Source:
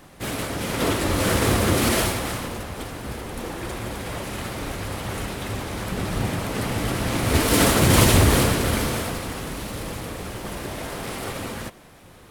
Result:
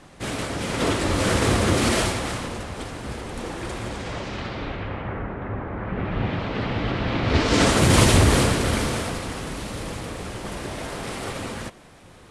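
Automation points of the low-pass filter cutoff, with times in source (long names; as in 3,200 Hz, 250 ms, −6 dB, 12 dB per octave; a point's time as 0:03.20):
low-pass filter 24 dB per octave
0:03.82 9,400 Hz
0:04.60 4,300 Hz
0:05.24 1,800 Hz
0:05.77 1,800 Hz
0:06.40 4,000 Hz
0:07.21 4,000 Hz
0:07.81 10,000 Hz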